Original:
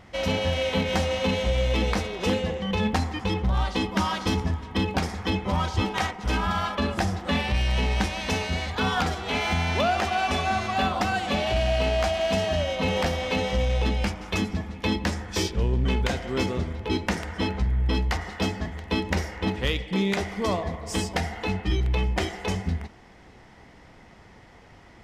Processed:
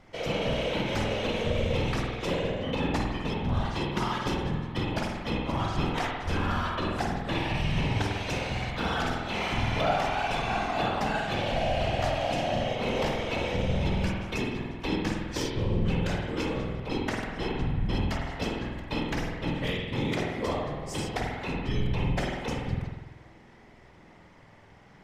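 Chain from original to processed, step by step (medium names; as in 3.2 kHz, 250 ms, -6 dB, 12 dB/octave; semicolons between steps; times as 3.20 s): whisper effect; spring tank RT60 1.1 s, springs 48 ms, chirp 35 ms, DRR 0 dB; trim -6.5 dB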